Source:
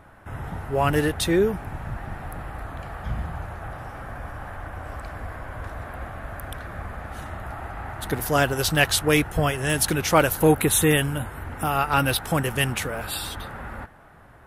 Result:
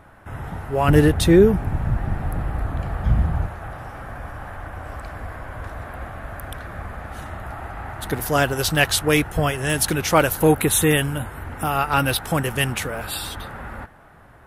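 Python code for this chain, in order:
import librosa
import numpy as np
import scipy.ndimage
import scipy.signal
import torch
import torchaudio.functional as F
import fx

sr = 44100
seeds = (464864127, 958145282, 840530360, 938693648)

y = fx.low_shelf(x, sr, hz=420.0, db=10.0, at=(0.88, 3.48))
y = F.gain(torch.from_numpy(y), 1.5).numpy()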